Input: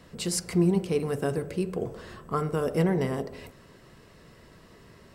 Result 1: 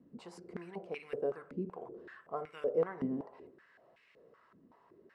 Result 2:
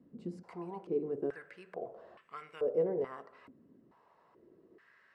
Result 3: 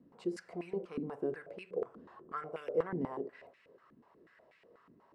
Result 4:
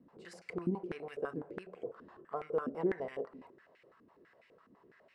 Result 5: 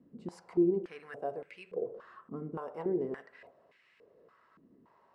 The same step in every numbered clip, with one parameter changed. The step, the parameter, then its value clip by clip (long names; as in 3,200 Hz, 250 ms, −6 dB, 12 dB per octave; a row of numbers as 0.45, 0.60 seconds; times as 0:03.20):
band-pass on a step sequencer, speed: 5.3, 2.3, 8.2, 12, 3.5 Hertz